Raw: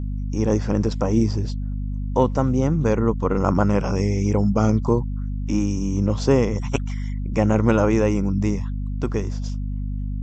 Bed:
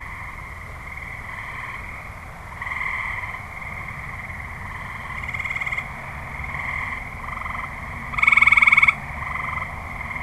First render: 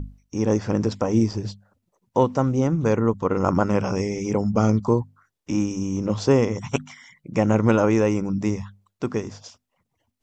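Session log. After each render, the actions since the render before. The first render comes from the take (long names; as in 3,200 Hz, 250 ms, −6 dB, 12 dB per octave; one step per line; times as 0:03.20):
mains-hum notches 50/100/150/200/250 Hz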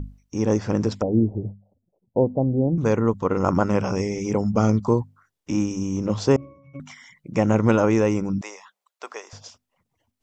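0:01.02–0:02.78: Butterworth low-pass 760 Hz 48 dB per octave
0:06.36–0:06.80: resonances in every octave C#, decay 0.58 s
0:08.41–0:09.33: high-pass filter 590 Hz 24 dB per octave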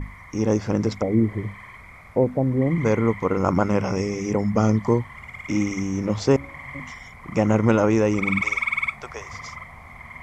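mix in bed −10.5 dB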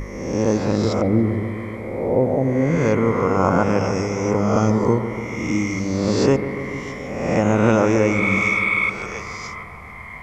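peak hold with a rise ahead of every peak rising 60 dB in 1.18 s
delay with a low-pass on its return 144 ms, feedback 74%, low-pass 1,900 Hz, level −11 dB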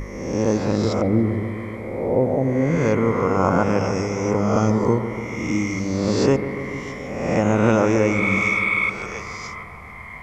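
level −1 dB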